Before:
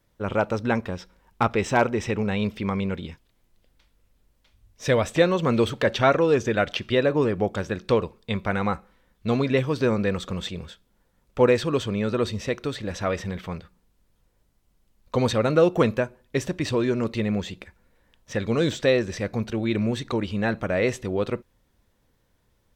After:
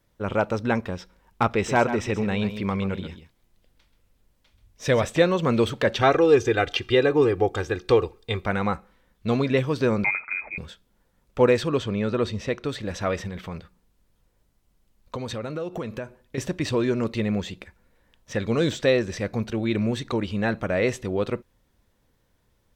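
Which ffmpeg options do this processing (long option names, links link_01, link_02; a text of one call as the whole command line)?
ffmpeg -i in.wav -filter_complex "[0:a]asettb=1/sr,asplit=3[link_01][link_02][link_03];[link_01]atrim=end=1.504[link_04];[link_02]atrim=start=1.5:end=5.05,asetpts=PTS-STARTPTS,afade=type=in:duration=0.004:curve=qsin,afade=type=out:start_time=3.546:duration=0.004:curve=qsin,aecho=1:1:132:0.282,atrim=end_sample=156555[link_05];[link_03]atrim=start=5.046[link_06];[link_04][link_05]acrossfade=duration=0.004:curve1=hsin:curve2=qsin[link_07];[link_07][link_06]acrossfade=duration=0.004:curve1=qsin:curve2=hsin,asettb=1/sr,asplit=3[link_08][link_09][link_10];[link_08]atrim=end=6.014[link_11];[link_09]atrim=start=6.01:end=8.46,asetpts=PTS-STARTPTS,afade=type=in:duration=0.004:curve=qsin,afade=type=out:start_time=2.446:duration=0.004:curve=qsin,aecho=1:1:2.5:0.71,atrim=end_sample=108045[link_12];[link_10]atrim=start=8.456[link_13];[link_11][link_12]acrossfade=duration=0.004:curve1=hsin:curve2=qsin[link_14];[link_14][link_13]acrossfade=duration=0.004:curve1=qsin:curve2=hsin,asettb=1/sr,asplit=3[link_15][link_16][link_17];[link_15]atrim=end=10.044[link_18];[link_16]atrim=start=10.04:end=10.58,asetpts=PTS-STARTPTS,afade=type=in:duration=0.004:curve=qsin,afade=type=out:start_time=0.536:duration=0.004:curve=qsin,lowpass=frequency=2200:width_type=q:width=0.5098,lowpass=frequency=2200:width_type=q:width=0.6013,lowpass=frequency=2200:width_type=q:width=0.9,lowpass=frequency=2200:width_type=q:width=2.563,afreqshift=-2600[link_19];[link_17]atrim=start=10.576[link_20];[link_18][link_19]acrossfade=duration=0.004:curve1=hsin:curve2=qsin[link_21];[link_21][link_20]acrossfade=duration=0.004:curve1=qsin:curve2=hsin,asettb=1/sr,asplit=3[link_22][link_23][link_24];[link_22]atrim=end=11.684[link_25];[link_23]atrim=start=11.68:end=12.69,asetpts=PTS-STARTPTS,afade=type=in:duration=0.004:curve=qsin,afade=type=out:start_time=1.006:duration=0.004:curve=qsin,highshelf=frequency=7600:gain=-10[link_26];[link_24]atrim=start=12.686[link_27];[link_25][link_26]acrossfade=duration=0.004:curve1=hsin:curve2=qsin[link_28];[link_28][link_27]acrossfade=duration=0.004:curve1=qsin:curve2=hsin,asettb=1/sr,asplit=3[link_29][link_30][link_31];[link_29]atrim=end=13.274[link_32];[link_30]atrim=start=13.27:end=16.38,asetpts=PTS-STARTPTS,afade=type=in:duration=0.004:curve=qsin,afade=type=out:start_time=3.106:duration=0.004:curve=qsin,acompressor=threshold=-28dB:ratio=6:attack=3.2:release=140:knee=1:detection=peak[link_33];[link_31]atrim=start=16.376[link_34];[link_32][link_33]acrossfade=duration=0.004:curve1=hsin:curve2=qsin[link_35];[link_35][link_34]acrossfade=duration=0.004:curve1=qsin:curve2=hsin" out.wav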